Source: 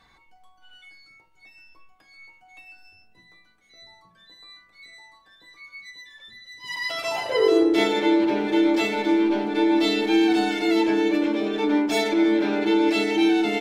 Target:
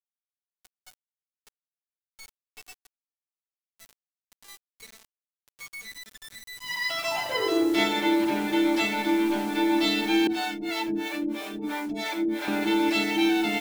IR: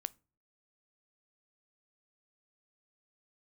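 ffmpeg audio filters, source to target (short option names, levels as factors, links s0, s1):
-filter_complex "[0:a]equalizer=f=450:t=o:w=0.62:g=-11.5,acrusher=bits=6:mix=0:aa=0.000001,asettb=1/sr,asplit=3[s0][s1][s2];[s0]atrim=end=10.274[s3];[s1]atrim=start=10.27:end=12.48,asetpts=PTS-STARTPTS,afade=t=in:d=0.004:c=qsin,afade=t=out:st=2.206:d=0.004:c=qsin,acrossover=split=460[s4][s5];[s4]aeval=exprs='val(0)*(1-1/2+1/2*cos(2*PI*3*n/s))':c=same[s6];[s5]aeval=exprs='val(0)*(1-1/2-1/2*cos(2*PI*3*n/s))':c=same[s7];[s6][s7]amix=inputs=2:normalize=0[s8];[s2]atrim=start=12.476[s9];[s3][s8]acrossfade=d=0.004:c1=hsin:c2=qsin[s10];[s10][s9]acrossfade=d=0.004:c1=qsin:c2=hsin"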